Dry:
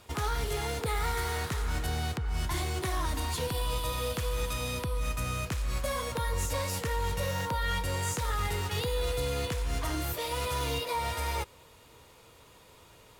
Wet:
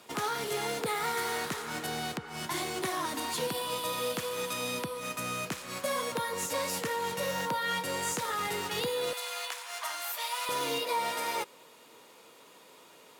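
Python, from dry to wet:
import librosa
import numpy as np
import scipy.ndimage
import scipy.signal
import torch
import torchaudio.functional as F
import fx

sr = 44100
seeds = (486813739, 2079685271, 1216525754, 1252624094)

y = fx.highpass(x, sr, hz=fx.steps((0.0, 170.0), (9.13, 750.0), (10.49, 200.0)), slope=24)
y = F.gain(torch.from_numpy(y), 1.5).numpy()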